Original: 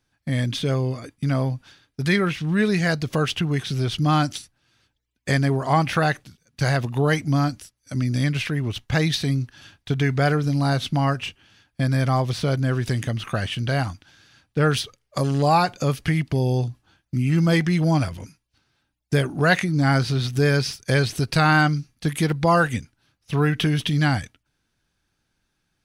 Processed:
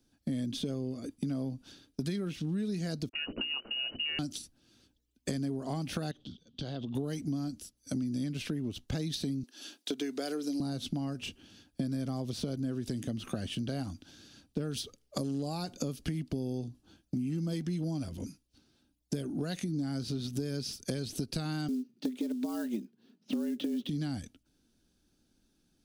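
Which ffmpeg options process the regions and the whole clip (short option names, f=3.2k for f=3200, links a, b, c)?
-filter_complex "[0:a]asettb=1/sr,asplit=3[a][b][c];[a]atrim=end=3.094[d];[b]atrim=start=3.09:end=4.19,asetpts=PTS-STARTPTS,afade=t=in:d=0.004:c=qsin,afade=t=out:st=1.096:d=0.004:c=qsin,aeval=exprs='sgn(val(0))*max(abs(val(0))-0.0168,0)':c=same,lowpass=f=2.6k:t=q:w=0.5098,lowpass=f=2.6k:t=q:w=0.6013,lowpass=f=2.6k:t=q:w=0.9,lowpass=f=2.6k:t=q:w=2.563,afreqshift=-3000,bandreject=f=60:t=h:w=6,bandreject=f=120:t=h:w=6,bandreject=f=180:t=h:w=6,bandreject=f=240:t=h:w=6,bandreject=f=300:t=h:w=6,bandreject=f=360:t=h:w=6,bandreject=f=420:t=h:w=6,bandreject=f=480:t=h:w=6,bandreject=f=540:t=h:w=6,bandreject=f=600:t=h:w=6[e];[c]atrim=start=4.186[f];[d][e]acrossfade=d=0.004:c1=hsin:c2=qsin[g];[g][f]acrossfade=d=0.004:c1=qsin:c2=hsin,asettb=1/sr,asplit=3[h][i][j];[h]atrim=end=6.114[k];[i]atrim=start=6.11:end=6.95,asetpts=PTS-STARTPTS,afade=t=in:d=0.004:c=qsin,afade=t=out:st=0.836:d=0.004:c=qsin,acompressor=threshold=-38dB:ratio=3:attack=3.2:release=140:knee=1:detection=peak,lowpass=f=3.3k:t=q:w=9.3,equalizer=f=2.2k:t=o:w=0.98:g=-11[l];[j]atrim=start=6.946[m];[k][l]acrossfade=d=0.004:c1=hsin:c2=qsin[n];[n][m]acrossfade=d=0.004:c1=qsin:c2=hsin,asettb=1/sr,asplit=3[o][p][q];[o]atrim=end=9.434[r];[p]atrim=start=9.43:end=10.6,asetpts=PTS-STARTPTS,afade=t=in:d=0.004:c=qsin,afade=t=out:st=1.166:d=0.004:c=qsin,highpass=f=290:w=0.5412,highpass=f=290:w=1.3066,highshelf=f=2.8k:g=6.5[s];[q]atrim=start=10.596[t];[r][s]acrossfade=d=0.004:c1=hsin:c2=qsin[u];[u][t]acrossfade=d=0.004:c1=qsin:c2=hsin,asettb=1/sr,asplit=3[v][w][x];[v]atrim=end=21.684[y];[w]atrim=start=21.68:end=23.89,asetpts=PTS-STARTPTS,afade=t=in:d=0.004:c=qsin,afade=t=out:st=2.206:d=0.004:c=qsin,lowpass=3.5k,afreqshift=110,acrusher=bits=5:mode=log:mix=0:aa=0.000001[z];[x]atrim=start=23.886[aa];[y][z]acrossfade=d=0.004:c1=hsin:c2=qsin[ab];[ab][aa]acrossfade=d=0.004:c1=qsin:c2=hsin,acrossover=split=160|3000[ac][ad][ae];[ad]acompressor=threshold=-22dB:ratio=6[af];[ac][af][ae]amix=inputs=3:normalize=0,equalizer=f=125:t=o:w=1:g=-7,equalizer=f=250:t=o:w=1:g=9,equalizer=f=1k:t=o:w=1:g=-8,equalizer=f=2k:t=o:w=1:g=-11,acompressor=threshold=-35dB:ratio=5,volume=2dB"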